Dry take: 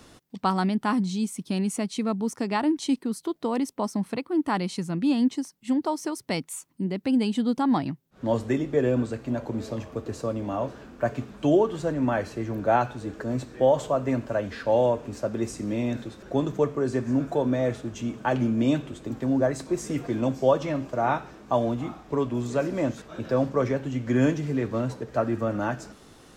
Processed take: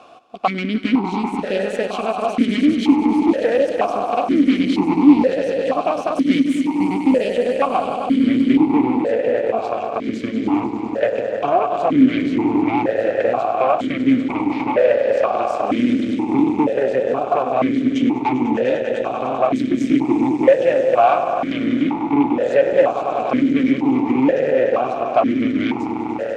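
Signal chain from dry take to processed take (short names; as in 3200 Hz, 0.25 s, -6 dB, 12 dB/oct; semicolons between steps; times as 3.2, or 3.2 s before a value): compressor 4:1, threshold -27 dBFS, peak gain reduction 10.5 dB; swelling echo 99 ms, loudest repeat 5, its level -11 dB; added harmonics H 8 -14 dB, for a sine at -13.5 dBFS; maximiser +15.5 dB; vowel sequencer 2.1 Hz; gain +5 dB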